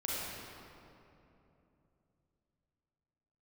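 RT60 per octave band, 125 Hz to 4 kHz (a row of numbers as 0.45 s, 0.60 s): 4.2 s, 3.7 s, 3.2 s, 2.7 s, 2.2 s, 1.7 s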